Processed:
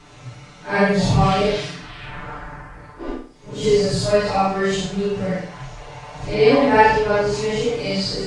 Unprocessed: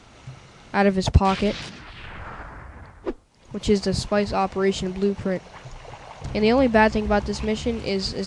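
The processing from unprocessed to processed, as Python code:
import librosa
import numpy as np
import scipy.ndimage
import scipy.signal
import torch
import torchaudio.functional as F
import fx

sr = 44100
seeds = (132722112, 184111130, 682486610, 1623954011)

y = fx.phase_scramble(x, sr, seeds[0], window_ms=200)
y = y + 0.88 * np.pad(y, (int(6.8 * sr / 1000.0), 0))[:len(y)]
y = fx.room_flutter(y, sr, wall_m=8.8, rt60_s=0.44)
y = y * 10.0 ** (1.0 / 20.0)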